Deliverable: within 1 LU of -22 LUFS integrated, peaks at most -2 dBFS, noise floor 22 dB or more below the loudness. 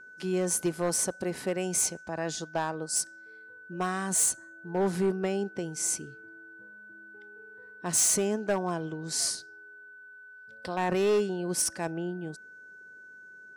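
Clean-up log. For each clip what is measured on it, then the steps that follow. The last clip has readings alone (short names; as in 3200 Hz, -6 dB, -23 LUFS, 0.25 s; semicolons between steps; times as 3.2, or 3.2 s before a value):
clipped 0.5%; flat tops at -20.5 dBFS; steady tone 1500 Hz; tone level -47 dBFS; loudness -29.0 LUFS; peak -20.5 dBFS; loudness target -22.0 LUFS
-> clip repair -20.5 dBFS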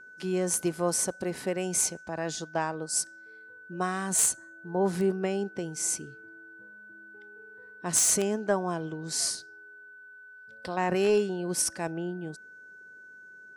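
clipped 0.0%; steady tone 1500 Hz; tone level -47 dBFS
-> notch 1500 Hz, Q 30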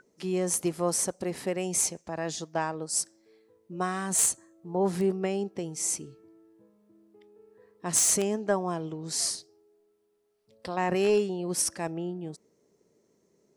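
steady tone none; loudness -28.5 LUFS; peak -11.5 dBFS; loudness target -22.0 LUFS
-> gain +6.5 dB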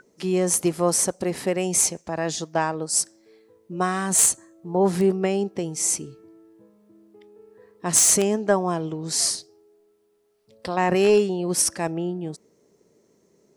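loudness -22.0 LUFS; peak -5.0 dBFS; noise floor -64 dBFS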